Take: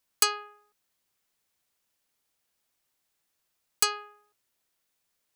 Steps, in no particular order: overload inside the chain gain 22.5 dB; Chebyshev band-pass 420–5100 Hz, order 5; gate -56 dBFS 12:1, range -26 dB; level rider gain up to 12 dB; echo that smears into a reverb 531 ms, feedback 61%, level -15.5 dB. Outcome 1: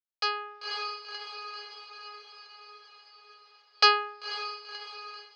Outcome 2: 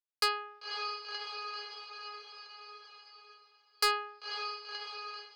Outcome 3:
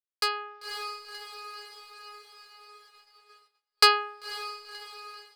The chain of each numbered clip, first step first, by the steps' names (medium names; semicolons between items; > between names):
echo that smears into a reverb > overload inside the chain > level rider > gate > Chebyshev band-pass; gate > echo that smears into a reverb > level rider > Chebyshev band-pass > overload inside the chain; Chebyshev band-pass > overload inside the chain > echo that smears into a reverb > level rider > gate